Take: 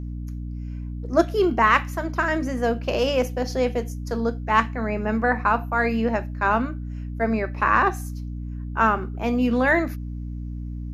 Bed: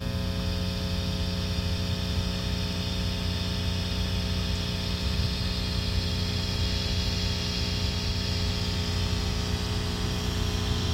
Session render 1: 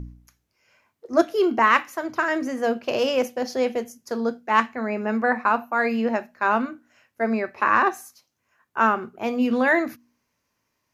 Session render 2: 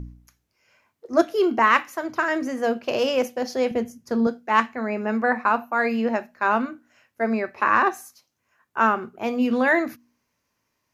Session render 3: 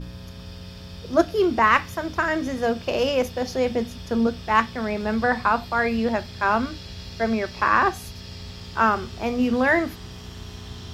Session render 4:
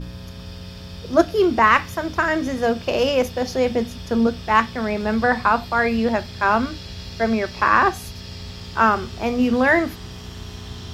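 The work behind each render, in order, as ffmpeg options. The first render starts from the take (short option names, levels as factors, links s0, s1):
-af "bandreject=f=60:t=h:w=4,bandreject=f=120:t=h:w=4,bandreject=f=180:t=h:w=4,bandreject=f=240:t=h:w=4,bandreject=f=300:t=h:w=4"
-filter_complex "[0:a]asettb=1/sr,asplit=3[s0][s1][s2];[s0]atrim=end=3.714[s3];[s1]atrim=start=3.71:end=4.27,asetpts=PTS-STARTPTS,afade=t=in:d=0.004:c=qsin,afade=t=out:st=0.556:d=0.004:c=qsin,bass=f=250:g=12,treble=f=4000:g=-5[s4];[s2]atrim=start=4.266[s5];[s3][s4]acrossfade=d=0.004:c1=hsin:c2=qsin[s6];[s6][s5]acrossfade=d=0.004:c1=qsin:c2=hsin"
-filter_complex "[1:a]volume=0.316[s0];[0:a][s0]amix=inputs=2:normalize=0"
-af "volume=1.41,alimiter=limit=0.794:level=0:latency=1"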